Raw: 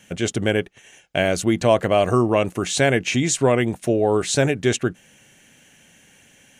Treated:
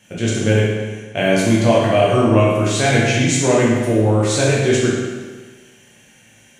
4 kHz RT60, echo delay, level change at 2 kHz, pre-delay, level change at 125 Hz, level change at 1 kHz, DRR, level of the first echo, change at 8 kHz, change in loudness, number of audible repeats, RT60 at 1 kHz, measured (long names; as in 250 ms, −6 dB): 1.3 s, no echo audible, +4.0 dB, 9 ms, +8.0 dB, +3.5 dB, −6.5 dB, no echo audible, +3.0 dB, +4.0 dB, no echo audible, 1.4 s